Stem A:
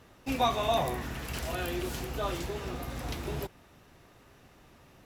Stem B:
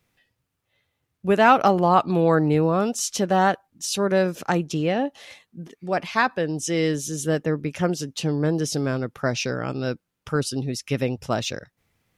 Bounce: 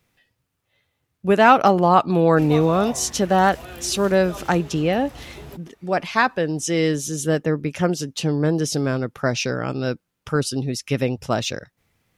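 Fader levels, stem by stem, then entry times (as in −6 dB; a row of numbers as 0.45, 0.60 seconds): −4.0, +2.5 decibels; 2.10, 0.00 seconds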